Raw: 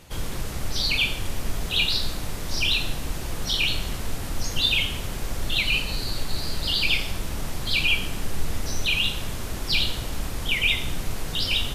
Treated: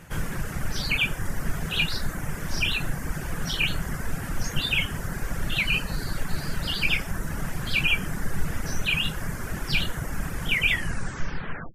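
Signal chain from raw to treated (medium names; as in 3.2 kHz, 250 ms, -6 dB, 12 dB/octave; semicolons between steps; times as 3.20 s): tape stop on the ending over 1.08 s; fifteen-band graphic EQ 160 Hz +9 dB, 1.6 kHz +10 dB, 4 kHz -10 dB; reverb removal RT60 0.74 s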